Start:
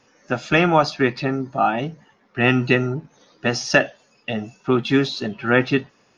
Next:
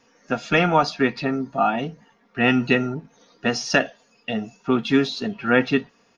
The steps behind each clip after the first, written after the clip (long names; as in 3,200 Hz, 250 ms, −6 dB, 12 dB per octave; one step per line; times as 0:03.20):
comb filter 4.3 ms, depth 42%
level −2 dB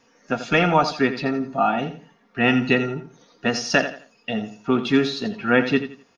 repeating echo 85 ms, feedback 28%, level −11.5 dB